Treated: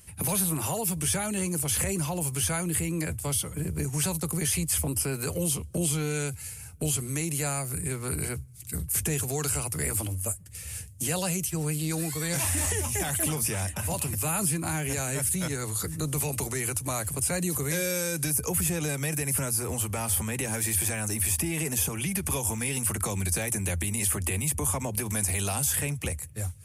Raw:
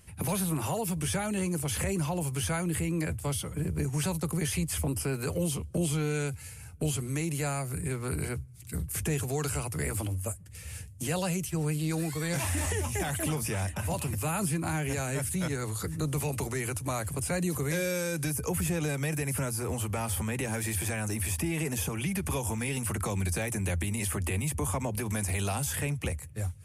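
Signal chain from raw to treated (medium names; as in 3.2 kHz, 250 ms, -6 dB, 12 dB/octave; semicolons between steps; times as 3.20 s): treble shelf 4.8 kHz +9.5 dB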